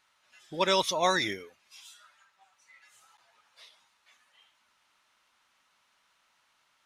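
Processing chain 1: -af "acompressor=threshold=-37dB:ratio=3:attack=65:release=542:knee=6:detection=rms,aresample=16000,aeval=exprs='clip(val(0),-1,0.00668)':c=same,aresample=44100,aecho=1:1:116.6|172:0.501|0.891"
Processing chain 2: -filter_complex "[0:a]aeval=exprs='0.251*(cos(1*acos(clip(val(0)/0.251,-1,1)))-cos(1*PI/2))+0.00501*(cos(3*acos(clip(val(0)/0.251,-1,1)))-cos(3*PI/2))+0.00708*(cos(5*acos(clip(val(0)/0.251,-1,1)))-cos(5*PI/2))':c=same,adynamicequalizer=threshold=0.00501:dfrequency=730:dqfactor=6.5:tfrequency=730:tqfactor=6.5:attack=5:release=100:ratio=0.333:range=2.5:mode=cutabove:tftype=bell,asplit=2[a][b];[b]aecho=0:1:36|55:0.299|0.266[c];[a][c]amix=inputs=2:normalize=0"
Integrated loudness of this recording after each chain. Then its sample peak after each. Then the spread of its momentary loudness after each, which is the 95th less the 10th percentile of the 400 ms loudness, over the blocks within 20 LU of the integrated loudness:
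-41.0, -27.5 LUFS; -22.0, -11.0 dBFS; 23, 14 LU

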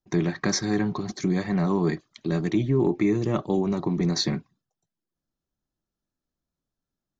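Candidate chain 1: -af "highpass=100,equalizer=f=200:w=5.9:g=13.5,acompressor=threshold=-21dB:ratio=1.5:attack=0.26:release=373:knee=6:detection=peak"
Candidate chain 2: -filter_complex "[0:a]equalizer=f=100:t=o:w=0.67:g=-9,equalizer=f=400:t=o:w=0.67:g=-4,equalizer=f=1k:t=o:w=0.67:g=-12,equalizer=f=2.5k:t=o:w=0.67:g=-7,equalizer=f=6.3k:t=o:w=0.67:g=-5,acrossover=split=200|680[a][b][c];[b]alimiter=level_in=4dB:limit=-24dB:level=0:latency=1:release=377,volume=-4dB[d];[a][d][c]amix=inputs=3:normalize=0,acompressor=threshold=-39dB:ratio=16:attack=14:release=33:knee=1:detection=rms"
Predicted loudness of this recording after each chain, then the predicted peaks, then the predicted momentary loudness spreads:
-23.5, -41.0 LUFS; -11.5, -25.0 dBFS; 6, 3 LU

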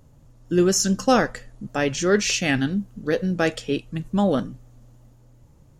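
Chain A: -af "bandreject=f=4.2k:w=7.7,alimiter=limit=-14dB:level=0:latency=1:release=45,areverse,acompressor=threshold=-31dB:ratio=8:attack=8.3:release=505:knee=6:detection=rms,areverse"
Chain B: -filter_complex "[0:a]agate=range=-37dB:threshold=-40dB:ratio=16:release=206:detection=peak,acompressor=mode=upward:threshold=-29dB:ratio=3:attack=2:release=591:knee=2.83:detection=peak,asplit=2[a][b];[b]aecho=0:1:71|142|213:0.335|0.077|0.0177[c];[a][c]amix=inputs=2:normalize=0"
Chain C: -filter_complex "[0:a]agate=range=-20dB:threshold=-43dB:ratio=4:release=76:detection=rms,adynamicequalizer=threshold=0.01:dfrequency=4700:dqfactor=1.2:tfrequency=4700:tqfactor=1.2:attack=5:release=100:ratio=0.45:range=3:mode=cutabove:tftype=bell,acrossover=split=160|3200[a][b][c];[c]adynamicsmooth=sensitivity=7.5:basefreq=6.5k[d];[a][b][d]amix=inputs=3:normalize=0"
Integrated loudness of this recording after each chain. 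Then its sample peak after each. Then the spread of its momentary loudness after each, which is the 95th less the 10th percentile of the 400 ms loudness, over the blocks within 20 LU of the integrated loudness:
-37.5, -22.0, -23.0 LUFS; -21.0, -4.5, -4.0 dBFS; 19, 9, 9 LU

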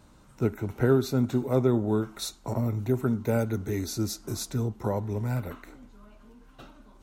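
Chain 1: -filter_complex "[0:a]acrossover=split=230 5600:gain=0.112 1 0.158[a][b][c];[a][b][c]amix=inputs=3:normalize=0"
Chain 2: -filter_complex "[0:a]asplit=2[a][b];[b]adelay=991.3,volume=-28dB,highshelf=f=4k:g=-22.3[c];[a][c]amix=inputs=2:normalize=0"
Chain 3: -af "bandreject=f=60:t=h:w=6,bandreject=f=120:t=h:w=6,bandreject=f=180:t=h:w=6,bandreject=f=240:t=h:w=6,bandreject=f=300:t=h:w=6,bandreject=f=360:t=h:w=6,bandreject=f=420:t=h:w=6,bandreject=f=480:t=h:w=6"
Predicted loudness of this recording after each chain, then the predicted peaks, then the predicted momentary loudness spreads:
-31.5, -28.0, -29.0 LUFS; -13.5, -10.0, -10.0 dBFS; 12, 9, 9 LU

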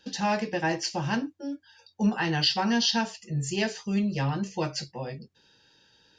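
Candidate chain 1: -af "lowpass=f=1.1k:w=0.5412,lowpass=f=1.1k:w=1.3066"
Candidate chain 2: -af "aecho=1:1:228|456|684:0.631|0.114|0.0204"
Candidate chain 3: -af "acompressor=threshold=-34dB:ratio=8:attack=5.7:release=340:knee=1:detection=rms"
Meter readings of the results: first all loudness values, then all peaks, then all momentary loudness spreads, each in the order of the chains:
-30.5, -26.5, -40.0 LUFS; -15.0, -11.0, -25.0 dBFS; 11, 13, 12 LU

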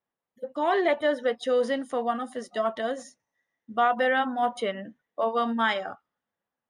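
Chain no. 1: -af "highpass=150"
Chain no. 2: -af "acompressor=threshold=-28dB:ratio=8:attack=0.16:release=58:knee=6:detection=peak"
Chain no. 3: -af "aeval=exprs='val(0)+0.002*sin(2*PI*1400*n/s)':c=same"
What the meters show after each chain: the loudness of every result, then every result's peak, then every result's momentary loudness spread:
-27.0, -35.5, -27.0 LUFS; -12.5, -25.5, -12.5 dBFS; 13, 9, 13 LU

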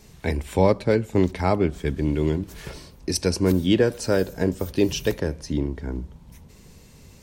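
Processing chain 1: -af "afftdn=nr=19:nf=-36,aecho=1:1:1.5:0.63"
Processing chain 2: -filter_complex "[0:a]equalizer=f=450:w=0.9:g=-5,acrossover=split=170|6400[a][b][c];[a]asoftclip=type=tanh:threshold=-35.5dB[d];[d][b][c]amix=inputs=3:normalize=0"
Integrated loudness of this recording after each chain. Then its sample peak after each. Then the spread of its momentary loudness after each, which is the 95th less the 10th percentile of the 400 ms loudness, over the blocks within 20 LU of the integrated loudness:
-23.5, -28.0 LUFS; -3.5, -10.5 dBFS; 12, 13 LU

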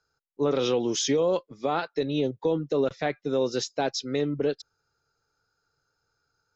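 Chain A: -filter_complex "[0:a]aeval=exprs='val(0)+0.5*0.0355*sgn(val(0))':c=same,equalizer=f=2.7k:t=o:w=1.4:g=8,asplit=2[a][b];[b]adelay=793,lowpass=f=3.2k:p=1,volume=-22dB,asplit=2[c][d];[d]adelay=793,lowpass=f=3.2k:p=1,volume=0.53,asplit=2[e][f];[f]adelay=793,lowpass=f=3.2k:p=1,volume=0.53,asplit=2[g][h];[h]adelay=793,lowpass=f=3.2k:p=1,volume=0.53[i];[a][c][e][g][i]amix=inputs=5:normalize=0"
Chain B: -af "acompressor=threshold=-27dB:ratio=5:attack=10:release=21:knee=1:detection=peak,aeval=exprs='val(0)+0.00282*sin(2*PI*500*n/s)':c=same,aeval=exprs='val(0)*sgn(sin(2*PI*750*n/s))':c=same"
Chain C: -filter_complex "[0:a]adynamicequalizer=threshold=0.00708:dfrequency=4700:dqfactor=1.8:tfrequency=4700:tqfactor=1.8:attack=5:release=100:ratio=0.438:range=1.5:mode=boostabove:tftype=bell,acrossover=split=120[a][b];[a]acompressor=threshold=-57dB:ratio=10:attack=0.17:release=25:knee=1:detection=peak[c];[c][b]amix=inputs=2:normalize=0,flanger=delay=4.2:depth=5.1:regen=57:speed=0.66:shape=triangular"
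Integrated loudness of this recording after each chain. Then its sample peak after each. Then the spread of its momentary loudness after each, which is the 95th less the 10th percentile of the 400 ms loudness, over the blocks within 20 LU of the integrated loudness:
-24.5, -28.0, -31.0 LUFS; -11.5, -16.0, -16.0 dBFS; 10, 4, 7 LU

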